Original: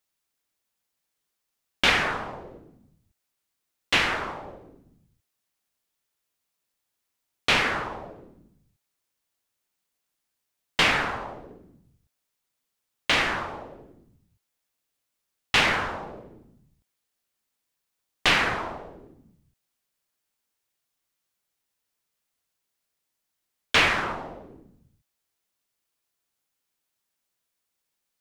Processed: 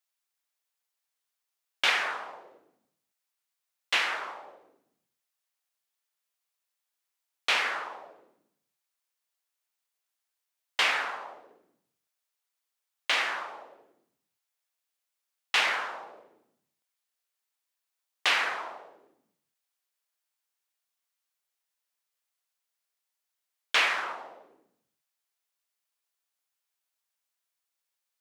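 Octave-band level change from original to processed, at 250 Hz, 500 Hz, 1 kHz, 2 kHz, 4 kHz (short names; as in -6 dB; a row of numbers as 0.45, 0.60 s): -18.5, -8.5, -4.5, -4.0, -4.0 dB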